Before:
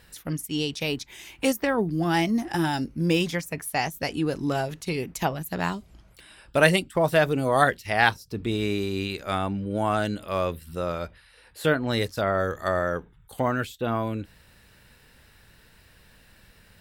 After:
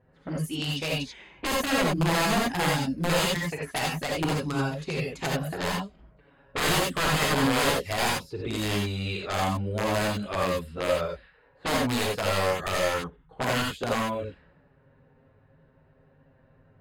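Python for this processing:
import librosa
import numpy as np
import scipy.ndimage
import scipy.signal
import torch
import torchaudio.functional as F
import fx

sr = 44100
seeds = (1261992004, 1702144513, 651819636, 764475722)

y = fx.highpass(x, sr, hz=72.0, slope=6)
y = fx.env_flanger(y, sr, rest_ms=8.1, full_db=-18.5)
y = (np.mod(10.0 ** (21.0 / 20.0) * y + 1.0, 2.0) - 1.0) / 10.0 ** (21.0 / 20.0)
y = fx.rev_gated(y, sr, seeds[0], gate_ms=110, shape='rising', drr_db=-2.0)
y = fx.env_lowpass(y, sr, base_hz=730.0, full_db=-25.5)
y = fx.high_shelf(y, sr, hz=8100.0, db=-9.0)
y = fx.notch(y, sr, hz=5700.0, q=7.8)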